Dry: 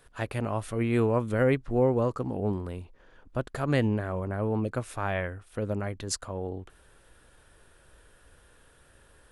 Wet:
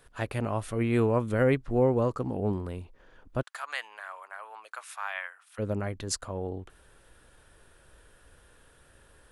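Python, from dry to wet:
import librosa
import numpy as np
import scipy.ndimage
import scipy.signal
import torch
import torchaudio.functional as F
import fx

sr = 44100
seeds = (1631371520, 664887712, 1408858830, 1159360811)

y = fx.highpass(x, sr, hz=950.0, slope=24, at=(3.41, 5.58), fade=0.02)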